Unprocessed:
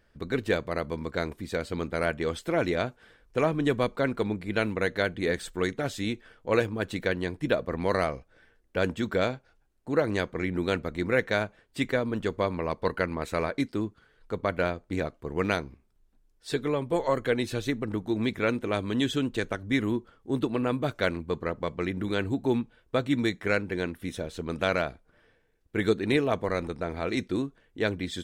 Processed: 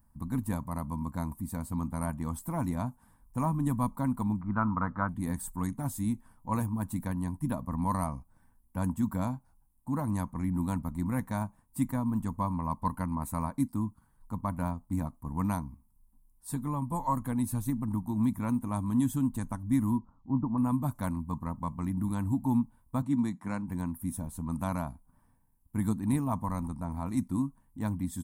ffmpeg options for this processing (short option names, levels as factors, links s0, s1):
-filter_complex "[0:a]asettb=1/sr,asplit=3[s0][s1][s2];[s0]atrim=end=4.414[s3];[s1]atrim=start=4.41:end=5.09,asetpts=PTS-STARTPTS,afade=t=in:d=0.004:c=qsin,afade=t=out:st=0.676:d=0.004:c=qsin,lowpass=f=1300:t=q:w=8.6[s4];[s2]atrim=start=5.086[s5];[s3][s4]acrossfade=d=0.004:c1=hsin:c2=qsin[s6];[s6][s5]acrossfade=d=0.004:c1=qsin:c2=hsin,asettb=1/sr,asplit=3[s7][s8][s9];[s7]atrim=end=19.984[s10];[s8]atrim=start=19.98:end=20.58,asetpts=PTS-STARTPTS,afade=t=in:d=0.004:c=qsin,afade=t=out:st=0.596:d=0.004:c=qsin,lowpass=f=1300:w=0.5412,lowpass=f=1300:w=1.3066[s11];[s9]atrim=start=20.576[s12];[s10][s11]acrossfade=d=0.004:c1=hsin:c2=qsin[s13];[s13][s12]acrossfade=d=0.004:c1=qsin:c2=hsin,asettb=1/sr,asplit=3[s14][s15][s16];[s14]atrim=end=23.024[s17];[s15]atrim=start=23.02:end=23.68,asetpts=PTS-STARTPTS,afade=t=in:d=0.004:c=qsin,afade=t=out:st=0.656:d=0.004:c=qsin,highpass=150,lowpass=6600[s18];[s16]atrim=start=23.676[s19];[s17][s18]acrossfade=d=0.004:c1=hsin:c2=qsin[s20];[s20][s19]acrossfade=d=0.004:c1=qsin:c2=hsin,firequalizer=gain_entry='entry(260,0);entry(390,-27);entry(970,3);entry(1400,-18);entry(3100,-26);entry(9900,9)':delay=0.05:min_phase=1,volume=1.33"